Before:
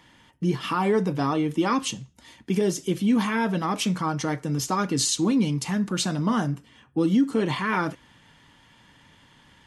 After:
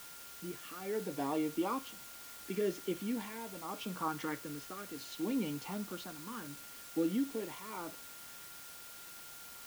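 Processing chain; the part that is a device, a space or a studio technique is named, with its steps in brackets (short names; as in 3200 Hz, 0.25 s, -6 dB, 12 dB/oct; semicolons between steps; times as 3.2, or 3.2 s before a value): shortwave radio (BPF 310–2700 Hz; tremolo 0.72 Hz, depth 71%; LFO notch saw up 0.49 Hz 580–2200 Hz; whine 1400 Hz -51 dBFS; white noise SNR 11 dB); gain -6.5 dB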